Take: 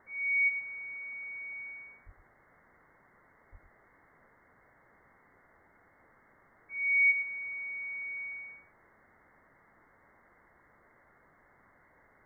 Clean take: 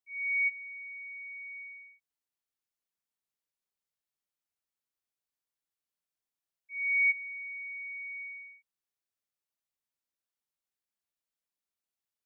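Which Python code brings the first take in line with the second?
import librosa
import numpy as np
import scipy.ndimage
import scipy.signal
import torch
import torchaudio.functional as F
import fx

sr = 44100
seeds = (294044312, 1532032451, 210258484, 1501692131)

y = fx.highpass(x, sr, hz=140.0, slope=24, at=(2.05, 2.17), fade=0.02)
y = fx.highpass(y, sr, hz=140.0, slope=24, at=(3.51, 3.63), fade=0.02)
y = fx.noise_reduce(y, sr, print_start_s=5.47, print_end_s=5.97, reduce_db=28.0)
y = fx.fix_echo_inverse(y, sr, delay_ms=108, level_db=-10.5)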